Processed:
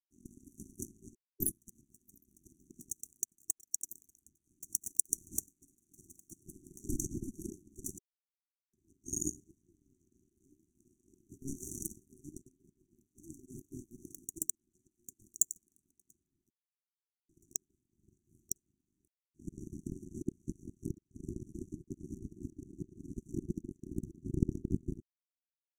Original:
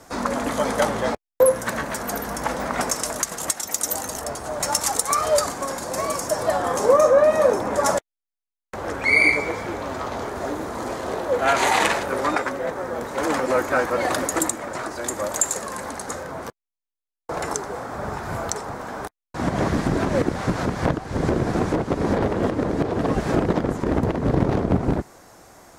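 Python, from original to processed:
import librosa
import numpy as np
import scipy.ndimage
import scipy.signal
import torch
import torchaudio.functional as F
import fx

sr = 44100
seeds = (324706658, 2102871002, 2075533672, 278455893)

y = fx.power_curve(x, sr, exponent=3.0)
y = fx.brickwall_bandstop(y, sr, low_hz=390.0, high_hz=5700.0)
y = y * 10.0 ** (1.5 / 20.0)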